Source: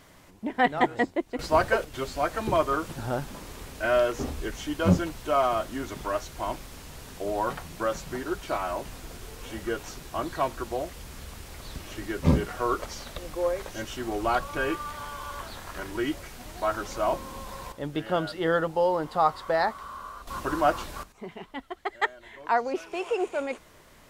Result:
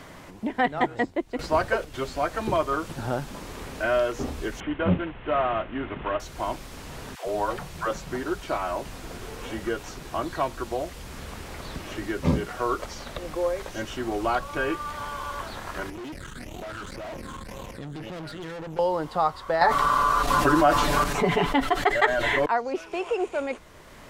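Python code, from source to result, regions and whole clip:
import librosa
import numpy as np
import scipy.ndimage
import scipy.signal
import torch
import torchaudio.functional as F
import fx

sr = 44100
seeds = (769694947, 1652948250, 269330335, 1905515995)

y = fx.chain(x, sr, fx.cvsd(bps=16000),
    fx.notch(hz=2300.0, q=28.0), at=(4.6, 6.2))
y = fx.chain(y, sr, fx.peak_eq(hz=260.0, db=-13.5, octaves=0.21),
    fx.dispersion(late='lows', ms=116.0, hz=380.0), at=(7.15, 7.91))
y = fx.chain(y, sr, fx.phaser_stages(stages=8, low_hz=660.0, high_hz=1600.0, hz=1.9, feedback_pct=30),
    fx.tube_stage(drive_db=41.0, bias=0.75),
    fx.env_flatten(amount_pct=70), at=(15.9, 18.79))
y = fx.chain(y, sr, fx.comb(ms=6.9, depth=0.98),
    fx.env_flatten(amount_pct=70), at=(19.61, 22.46))
y = fx.high_shelf(y, sr, hz=11000.0, db=-7.0)
y = fx.band_squash(y, sr, depth_pct=40)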